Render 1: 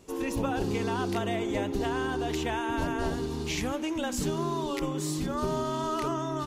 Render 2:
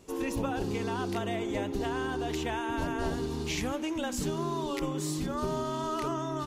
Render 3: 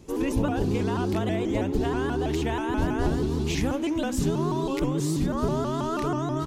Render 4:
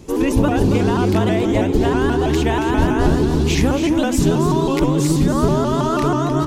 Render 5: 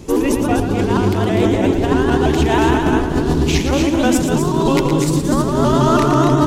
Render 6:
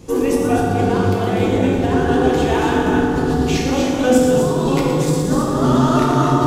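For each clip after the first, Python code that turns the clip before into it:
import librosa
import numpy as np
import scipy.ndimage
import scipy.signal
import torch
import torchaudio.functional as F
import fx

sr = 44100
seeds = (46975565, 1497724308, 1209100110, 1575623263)

y1 = fx.rider(x, sr, range_db=10, speed_s=0.5)
y1 = y1 * librosa.db_to_amplitude(-2.0)
y2 = fx.low_shelf(y1, sr, hz=380.0, db=8.5)
y2 = fx.vibrato_shape(y2, sr, shape='saw_up', rate_hz=6.2, depth_cents=160.0)
y2 = y2 * librosa.db_to_amplitude(1.5)
y3 = y2 + 10.0 ** (-9.0 / 20.0) * np.pad(y2, (int(277 * sr / 1000.0), 0))[:len(y2)]
y3 = y3 * librosa.db_to_amplitude(9.0)
y4 = fx.over_compress(y3, sr, threshold_db=-18.0, ratio=-0.5)
y4 = fx.echo_multitap(y4, sr, ms=(115, 247), db=(-8.0, -7.5))
y4 = y4 * librosa.db_to_amplitude(2.5)
y5 = fx.rev_fdn(y4, sr, rt60_s=1.7, lf_ratio=0.75, hf_ratio=0.6, size_ms=12.0, drr_db=-3.5)
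y5 = y5 * librosa.db_to_amplitude(-6.0)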